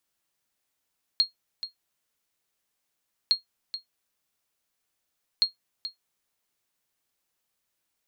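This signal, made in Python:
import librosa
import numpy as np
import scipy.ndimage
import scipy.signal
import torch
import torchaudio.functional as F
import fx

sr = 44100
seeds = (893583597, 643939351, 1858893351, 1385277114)

y = fx.sonar_ping(sr, hz=4260.0, decay_s=0.13, every_s=2.11, pings=3, echo_s=0.43, echo_db=-12.5, level_db=-12.5)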